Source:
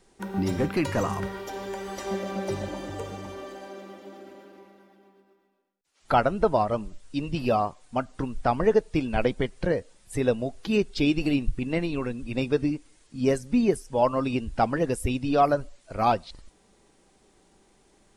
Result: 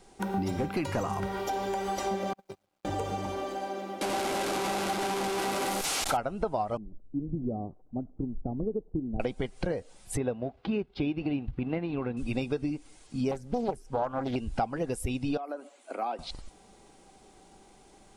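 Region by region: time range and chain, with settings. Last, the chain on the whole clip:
2.33–2.85 s: high-pass 110 Hz 6 dB/octave + gate -26 dBFS, range -50 dB + companded quantiser 8-bit
4.01–6.17 s: one-bit delta coder 64 kbps, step -26 dBFS + bass shelf 140 Hz -7 dB
6.77–9.20 s: zero-crossing glitches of -21 dBFS + four-pole ladder low-pass 440 Hz, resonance 25%
10.17–12.17 s: companding laws mixed up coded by A + high-pass 51 Hz + distance through air 360 m
13.31–14.36 s: treble shelf 2.3 kHz -9.5 dB + loudspeaker Doppler distortion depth 0.96 ms
15.37–16.19 s: peaking EQ 5.1 kHz -9 dB 0.71 oct + compression, threshold -34 dBFS + steep high-pass 240 Hz 48 dB/octave
whole clip: peaking EQ 770 Hz +7.5 dB 0.21 oct; band-stop 1.8 kHz, Q 12; compression 5:1, threshold -32 dBFS; trim +4 dB

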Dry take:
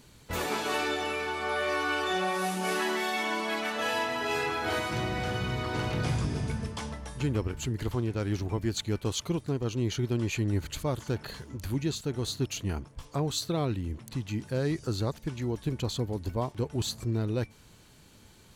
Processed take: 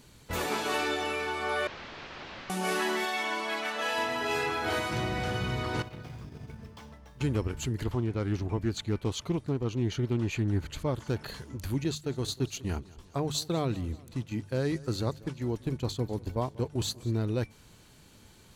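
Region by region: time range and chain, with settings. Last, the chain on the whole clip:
1.67–2.50 s: bass shelf 86 Hz +10.5 dB + integer overflow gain 32.5 dB + Gaussian low-pass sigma 2.5 samples
3.05–3.98 s: high-pass 430 Hz 6 dB/octave + treble shelf 9.1 kHz -5 dB
5.82–7.21 s: median filter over 5 samples + gate -30 dBFS, range -11 dB + compression 16:1, threshold -38 dBFS
7.84–11.09 s: treble shelf 4 kHz -7.5 dB + loudspeaker Doppler distortion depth 0.16 ms
11.84–17.12 s: gate -36 dBFS, range -9 dB + hum notches 50/100/150 Hz + feedback delay 191 ms, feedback 54%, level -21 dB
whole clip: none

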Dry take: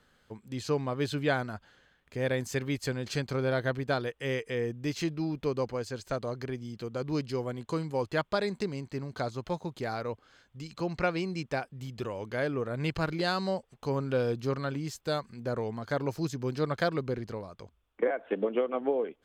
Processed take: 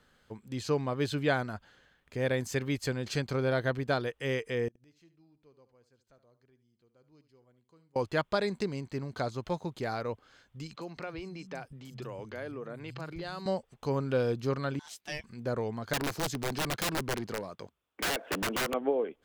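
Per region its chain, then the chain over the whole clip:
4.68–7.96 s: inverted gate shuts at -38 dBFS, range -31 dB + delay 73 ms -13.5 dB
10.76–13.46 s: compression 3:1, threshold -38 dBFS + three bands offset in time mids, highs, lows 40/190 ms, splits 160/5400 Hz
14.79–15.24 s: high-pass 810 Hz + ring modulator 1.2 kHz
15.93–18.74 s: high-pass 140 Hz + integer overflow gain 26.5 dB + waveshaping leveller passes 1
whole clip: none

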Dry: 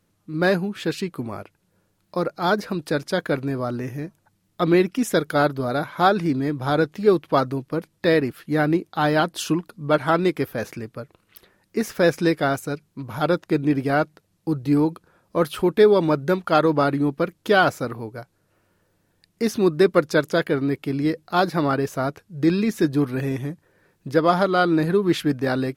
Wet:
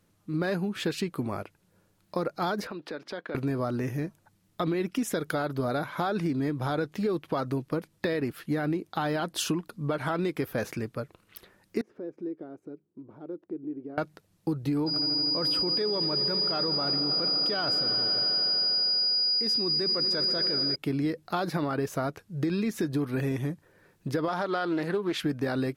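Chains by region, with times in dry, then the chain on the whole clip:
2.67–3.35 s: three-band isolator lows -23 dB, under 210 Hz, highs -22 dB, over 4.4 kHz + compression 3:1, threshold -37 dBFS
11.81–13.98 s: compression 2.5:1, threshold -35 dBFS + band-pass filter 340 Hz, Q 3.1
14.86–20.74 s: low-pass 11 kHz + whistle 4.9 kHz -22 dBFS + echo with a slow build-up 80 ms, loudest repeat 5, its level -18 dB
24.28–25.23 s: high-pass 400 Hz 6 dB/octave + treble shelf 9.2 kHz -8 dB + loudspeaker Doppler distortion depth 0.15 ms
whole clip: peak limiter -14 dBFS; compression, threshold -25 dBFS

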